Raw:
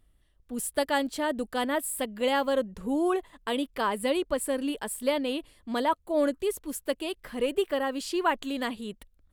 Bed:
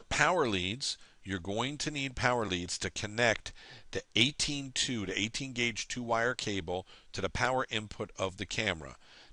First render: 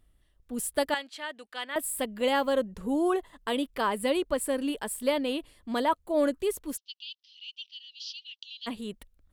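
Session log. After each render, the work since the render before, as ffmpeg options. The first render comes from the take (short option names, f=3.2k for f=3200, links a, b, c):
-filter_complex "[0:a]asettb=1/sr,asplit=3[a][b][c];[a]atrim=end=0.944[d];[b]atrim=start=0.94:end=1.76,asetpts=PTS-STARTPTS,afade=t=in:d=0.004:c=qsin,afade=t=out:st=0.816:d=0.004:c=qsin,bandpass=f=2.6k:t=q:w=1[e];[c]atrim=start=1.756[f];[d][e]acrossfade=d=0.004:c1=hsin:c2=qsin[g];[g][f]acrossfade=d=0.004:c1=qsin:c2=hsin,asettb=1/sr,asplit=3[h][i][j];[h]atrim=end=2.824[k];[i]atrim=start=2.82:end=3.48,asetpts=PTS-STARTPTS,afade=t=in:d=0.004:c=qsin,afade=t=out:st=0.656:d=0.004:c=qsin,bandreject=f=2.4k:w=7.6[l];[j]atrim=start=3.476[m];[k][l]acrossfade=d=0.004:c1=hsin:c2=qsin[n];[n][m]acrossfade=d=0.004:c1=qsin:c2=hsin,asplit=3[o][p][q];[o]afade=t=out:st=6.76:d=0.02[r];[p]asuperpass=centerf=4100:order=12:qfactor=1.3,afade=t=in:st=6.76:d=0.02,afade=t=out:st=8.66:d=0.02[s];[q]afade=t=in:st=8.66:d=0.02[t];[r][s][t]amix=inputs=3:normalize=0"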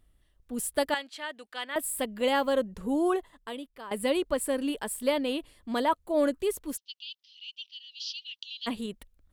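-filter_complex "[0:a]asplit=4[a][b][c][d];[a]atrim=end=3.91,asetpts=PTS-STARTPTS,afade=t=out:st=3.12:d=0.79:c=qua:silence=0.16788[e];[b]atrim=start=3.91:end=7.912,asetpts=PTS-STARTPTS,afade=t=in:d=0.004:c=hsin:silence=0.16788[f];[c]atrim=start=7.908:end=8.862,asetpts=PTS-STARTPTS,volume=3dB[g];[d]atrim=start=8.858[h];[e][f]concat=n=2:v=0:a=1[i];[i][g]acrossfade=d=0.004:c1=hsin:c2=hsin[j];[j][h]acrossfade=d=0.004:c1=hsin:c2=hsin"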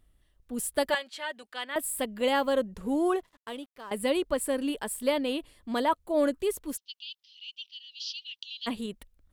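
-filter_complex "[0:a]asettb=1/sr,asplit=3[a][b][c];[a]atrim=end=0.844[d];[b]atrim=start=0.84:end=1.43,asetpts=PTS-STARTPTS,afade=t=in:d=0.004:c=qsin,afade=t=out:st=0.586:d=0.004:c=qsin,aecho=1:1:5.3:0.65,atrim=end_sample=26019[e];[c]atrim=start=1.426[f];[d][e]acrossfade=d=0.004:c1=hsin:c2=qsin[g];[g][f]acrossfade=d=0.004:c1=qsin:c2=hsin,asettb=1/sr,asplit=3[h][i][j];[h]atrim=end=2.784[k];[i]atrim=start=2.78:end=3.91,asetpts=PTS-STARTPTS,afade=t=in:d=0.004:c=qsin,afade=t=out:st=1.126:d=0.004:c=qsin,aeval=exprs='sgn(val(0))*max(abs(val(0))-0.00126,0)':c=same[l];[j]atrim=start=3.906[m];[k][l]acrossfade=d=0.004:c1=hsin:c2=qsin[n];[n][m]acrossfade=d=0.004:c1=qsin:c2=hsin"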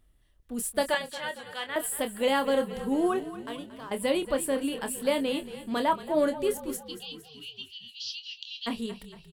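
-filter_complex "[0:a]asplit=2[a][b];[b]adelay=26,volume=-9dB[c];[a][c]amix=inputs=2:normalize=0,asplit=7[d][e][f][g][h][i][j];[e]adelay=229,afreqshift=-31,volume=-14dB[k];[f]adelay=458,afreqshift=-62,volume=-18.6dB[l];[g]adelay=687,afreqshift=-93,volume=-23.2dB[m];[h]adelay=916,afreqshift=-124,volume=-27.7dB[n];[i]adelay=1145,afreqshift=-155,volume=-32.3dB[o];[j]adelay=1374,afreqshift=-186,volume=-36.9dB[p];[d][k][l][m][n][o][p]amix=inputs=7:normalize=0"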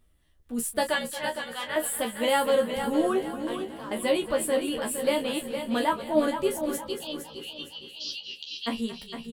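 -filter_complex "[0:a]asplit=2[a][b];[b]adelay=13,volume=-3.5dB[c];[a][c]amix=inputs=2:normalize=0,aecho=1:1:461|922|1383|1844:0.376|0.132|0.046|0.0161"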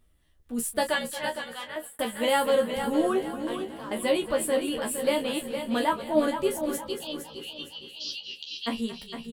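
-filter_complex "[0:a]asplit=2[a][b];[a]atrim=end=1.99,asetpts=PTS-STARTPTS,afade=t=out:st=1.16:d=0.83:c=qsin[c];[b]atrim=start=1.99,asetpts=PTS-STARTPTS,afade=t=in:d=0.004:c=hsin[d];[c][d]concat=n=2:v=0:a=1"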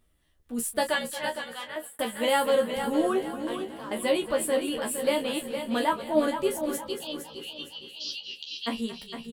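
-af "lowshelf=f=120:g=-5"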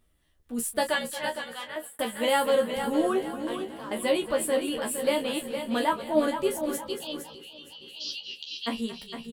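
-filter_complex "[0:a]asettb=1/sr,asplit=3[a][b][c];[a]atrim=end=7.344[d];[b]atrim=start=7.34:end=7.88,asetpts=PTS-STARTPTS,afade=t=in:d=0.004:c=qsin,afade=t=out:st=0.536:d=0.004:c=qsin,acompressor=threshold=-42dB:ratio=6:attack=3.2:release=140:knee=1:detection=peak[e];[c]atrim=start=7.876[f];[d][e]acrossfade=d=0.004:c1=hsin:c2=qsin[g];[g][f]acrossfade=d=0.004:c1=qsin:c2=hsin"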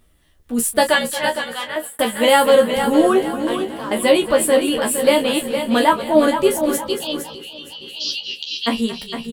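-af "volume=11dB,alimiter=limit=-2dB:level=0:latency=1"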